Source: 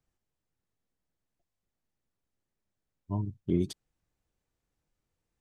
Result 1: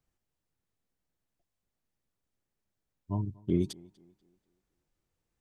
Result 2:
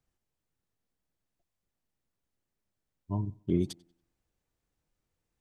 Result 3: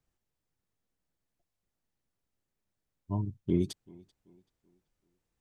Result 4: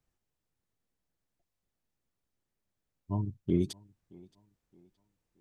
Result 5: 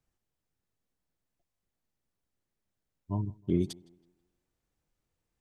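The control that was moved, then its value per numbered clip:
tape echo, time: 241 ms, 92 ms, 384 ms, 621 ms, 160 ms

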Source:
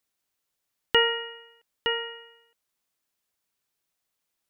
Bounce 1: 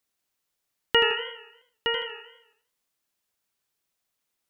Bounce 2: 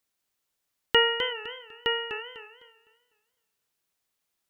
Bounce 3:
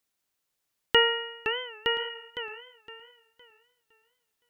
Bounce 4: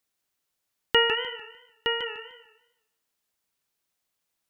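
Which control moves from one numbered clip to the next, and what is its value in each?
modulated delay, time: 81 ms, 252 ms, 512 ms, 150 ms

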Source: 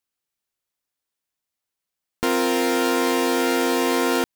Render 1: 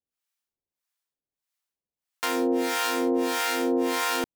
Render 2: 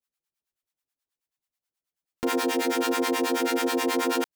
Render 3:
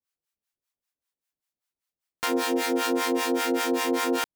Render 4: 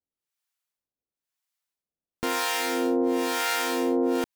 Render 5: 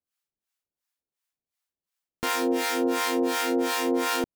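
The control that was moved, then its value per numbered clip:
harmonic tremolo, rate: 1.6 Hz, 9.3 Hz, 5.1 Hz, 1 Hz, 2.8 Hz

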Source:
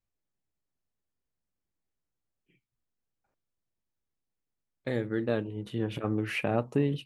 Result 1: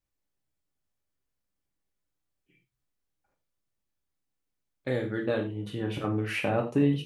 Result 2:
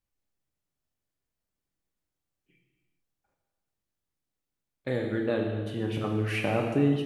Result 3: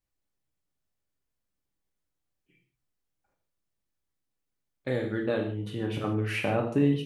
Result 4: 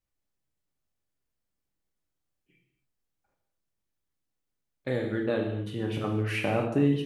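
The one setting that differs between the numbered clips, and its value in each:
gated-style reverb, gate: 130 ms, 470 ms, 200 ms, 300 ms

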